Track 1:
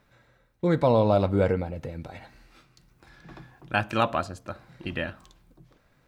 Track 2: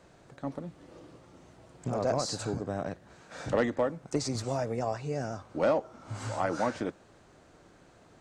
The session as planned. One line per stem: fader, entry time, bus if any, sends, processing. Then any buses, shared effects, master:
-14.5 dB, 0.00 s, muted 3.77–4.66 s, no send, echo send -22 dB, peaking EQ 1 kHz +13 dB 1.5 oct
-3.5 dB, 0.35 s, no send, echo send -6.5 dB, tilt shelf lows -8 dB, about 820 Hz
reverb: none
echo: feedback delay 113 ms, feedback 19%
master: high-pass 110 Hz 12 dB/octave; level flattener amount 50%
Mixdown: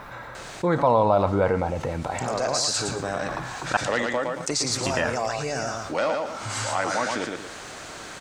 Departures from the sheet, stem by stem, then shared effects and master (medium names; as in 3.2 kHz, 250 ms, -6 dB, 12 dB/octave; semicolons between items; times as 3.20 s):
stem 1 -14.5 dB -> -6.0 dB; master: missing high-pass 110 Hz 12 dB/octave